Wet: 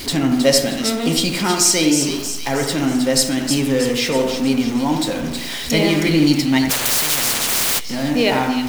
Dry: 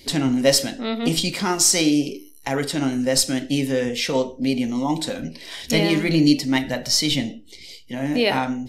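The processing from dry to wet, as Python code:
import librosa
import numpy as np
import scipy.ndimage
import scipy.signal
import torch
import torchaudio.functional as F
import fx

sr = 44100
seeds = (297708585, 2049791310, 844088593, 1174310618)

y = x + 0.5 * 10.0 ** (-27.0 / 20.0) * np.sign(x)
y = fx.echo_split(y, sr, split_hz=2500.0, low_ms=83, high_ms=317, feedback_pct=52, wet_db=-6.5)
y = fx.spectral_comp(y, sr, ratio=10.0, at=(6.69, 7.78), fade=0.02)
y = y * 10.0 ** (1.0 / 20.0)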